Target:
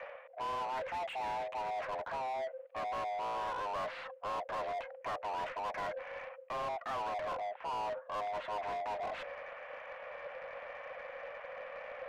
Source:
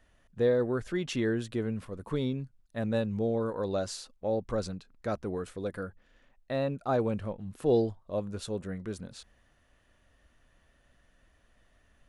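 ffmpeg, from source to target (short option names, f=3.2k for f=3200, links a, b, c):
-filter_complex "[0:a]areverse,acompressor=threshold=-44dB:ratio=6,areverse,aeval=exprs='val(0)*sin(2*PI*260*n/s)':c=same,highpass=f=280:t=q:w=0.5412,highpass=f=280:t=q:w=1.307,lowpass=f=2.5k:t=q:w=0.5176,lowpass=f=2.5k:t=q:w=0.7071,lowpass=f=2.5k:t=q:w=1.932,afreqshift=260,asplit=2[a][b];[b]highpass=f=720:p=1,volume=28dB,asoftclip=type=tanh:threshold=-38.5dB[c];[a][c]amix=inputs=2:normalize=0,lowpass=f=1.7k:p=1,volume=-6dB,volume=8dB"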